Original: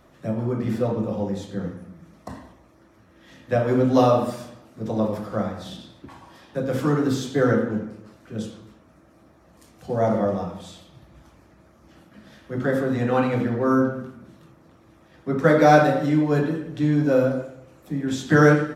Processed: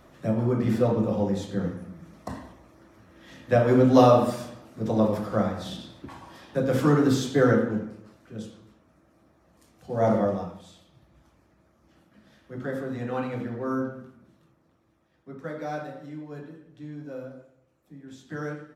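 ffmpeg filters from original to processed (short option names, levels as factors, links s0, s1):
-af "volume=2.51,afade=t=out:st=7.16:d=1.23:silence=0.398107,afade=t=in:st=9.9:d=0.19:silence=0.446684,afade=t=out:st=10.09:d=0.53:silence=0.354813,afade=t=out:st=13.81:d=1.7:silence=0.316228"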